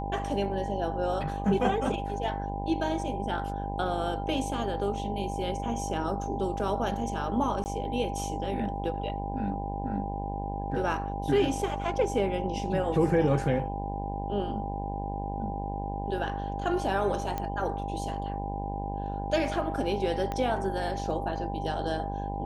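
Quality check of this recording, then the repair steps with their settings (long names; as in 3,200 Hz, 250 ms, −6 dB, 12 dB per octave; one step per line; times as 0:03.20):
mains buzz 50 Hz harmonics 20 −35 dBFS
whistle 800 Hz −36 dBFS
0:07.64–0:07.66: drop-out 19 ms
0:17.38: click −18 dBFS
0:20.32: click −19 dBFS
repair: click removal
notch filter 800 Hz, Q 30
hum removal 50 Hz, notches 20
repair the gap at 0:07.64, 19 ms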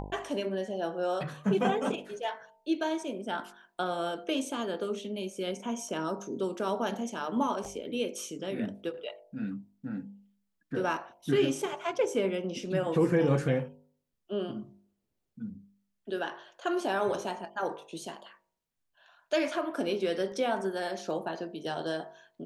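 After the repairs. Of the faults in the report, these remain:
0:20.32: click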